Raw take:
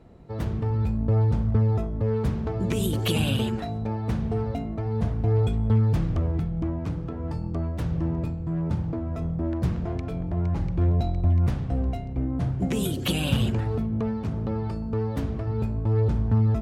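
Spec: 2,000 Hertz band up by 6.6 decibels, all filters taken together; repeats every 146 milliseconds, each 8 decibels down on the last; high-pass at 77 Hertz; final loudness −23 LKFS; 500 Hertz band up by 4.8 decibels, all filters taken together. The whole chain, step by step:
high-pass filter 77 Hz
parametric band 500 Hz +5.5 dB
parametric band 2,000 Hz +9 dB
repeating echo 146 ms, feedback 40%, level −8 dB
level +1.5 dB

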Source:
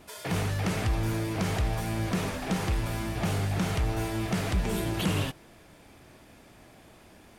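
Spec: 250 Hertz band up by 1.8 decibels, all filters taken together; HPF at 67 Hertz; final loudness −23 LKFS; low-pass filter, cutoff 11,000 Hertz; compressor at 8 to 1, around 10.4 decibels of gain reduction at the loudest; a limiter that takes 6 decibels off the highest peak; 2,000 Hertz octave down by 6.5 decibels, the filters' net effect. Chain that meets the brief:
high-pass filter 67 Hz
low-pass filter 11,000 Hz
parametric band 250 Hz +3 dB
parametric band 2,000 Hz −8.5 dB
downward compressor 8 to 1, threshold −34 dBFS
level +17.5 dB
brickwall limiter −14 dBFS

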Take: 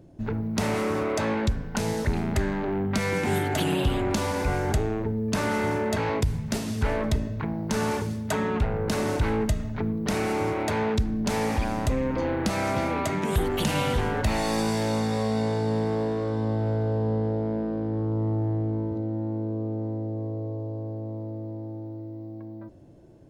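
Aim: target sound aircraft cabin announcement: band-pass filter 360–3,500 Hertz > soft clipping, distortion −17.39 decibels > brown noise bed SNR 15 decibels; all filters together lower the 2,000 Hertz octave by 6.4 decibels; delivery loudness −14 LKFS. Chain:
band-pass filter 360–3,500 Hz
parametric band 2,000 Hz −8 dB
soft clipping −25.5 dBFS
brown noise bed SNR 15 dB
level +20 dB

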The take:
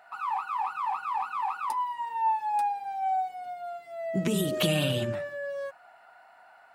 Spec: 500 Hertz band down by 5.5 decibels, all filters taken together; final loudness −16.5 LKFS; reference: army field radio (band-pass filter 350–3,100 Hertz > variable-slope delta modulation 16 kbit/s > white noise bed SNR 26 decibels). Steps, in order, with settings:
band-pass filter 350–3,100 Hz
parametric band 500 Hz −6.5 dB
variable-slope delta modulation 16 kbit/s
white noise bed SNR 26 dB
level +17 dB

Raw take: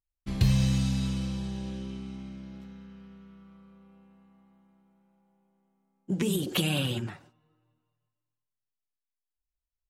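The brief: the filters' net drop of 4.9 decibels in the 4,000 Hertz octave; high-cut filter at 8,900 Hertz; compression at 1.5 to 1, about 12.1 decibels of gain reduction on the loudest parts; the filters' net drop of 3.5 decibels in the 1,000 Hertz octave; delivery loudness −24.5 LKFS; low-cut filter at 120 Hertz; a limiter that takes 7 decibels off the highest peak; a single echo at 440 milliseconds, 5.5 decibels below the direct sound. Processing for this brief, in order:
high-pass filter 120 Hz
low-pass filter 8,900 Hz
parametric band 1,000 Hz −4.5 dB
parametric band 4,000 Hz −6.5 dB
downward compressor 1.5 to 1, threshold −57 dBFS
brickwall limiter −34 dBFS
single-tap delay 440 ms −5.5 dB
level +21 dB

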